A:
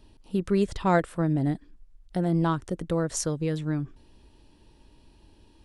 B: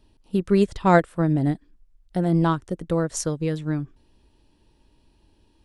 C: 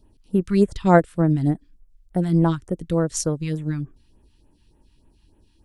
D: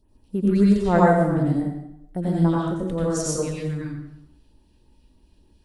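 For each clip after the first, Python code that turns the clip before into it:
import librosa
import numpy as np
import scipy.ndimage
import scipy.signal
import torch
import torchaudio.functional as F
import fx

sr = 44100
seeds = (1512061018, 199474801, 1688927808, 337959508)

y1 = fx.upward_expand(x, sr, threshold_db=-40.0, expansion=1.5)
y1 = y1 * 10.0 ** (6.5 / 20.0)
y2 = fx.phaser_stages(y1, sr, stages=2, low_hz=470.0, high_hz=4700.0, hz=3.4, feedback_pct=20)
y2 = y2 * 10.0 ** (2.0 / 20.0)
y3 = fx.rev_plate(y2, sr, seeds[0], rt60_s=0.79, hf_ratio=0.8, predelay_ms=75, drr_db=-5.5)
y3 = y3 * 10.0 ** (-6.5 / 20.0)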